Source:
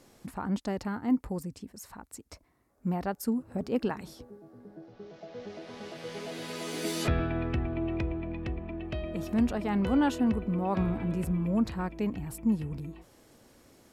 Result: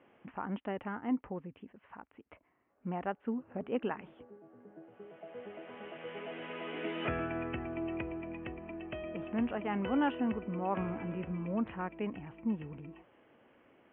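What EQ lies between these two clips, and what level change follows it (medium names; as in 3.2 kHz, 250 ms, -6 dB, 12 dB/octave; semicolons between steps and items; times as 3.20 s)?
high-pass 360 Hz 6 dB/octave; steep low-pass 3.1 kHz 96 dB/octave; -1.5 dB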